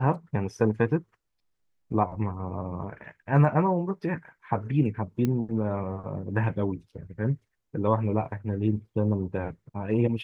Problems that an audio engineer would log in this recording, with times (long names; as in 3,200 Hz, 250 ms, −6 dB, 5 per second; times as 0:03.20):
0:05.25: click −15 dBFS